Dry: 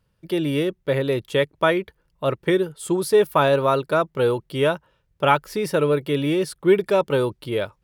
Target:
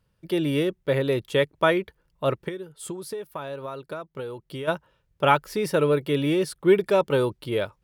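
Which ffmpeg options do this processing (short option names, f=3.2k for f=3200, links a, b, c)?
-filter_complex "[0:a]asplit=3[a][b][c];[a]afade=t=out:st=2.47:d=0.02[d];[b]acompressor=threshold=-31dB:ratio=6,afade=t=in:st=2.47:d=0.02,afade=t=out:st=4.67:d=0.02[e];[c]afade=t=in:st=4.67:d=0.02[f];[d][e][f]amix=inputs=3:normalize=0,volume=-1.5dB"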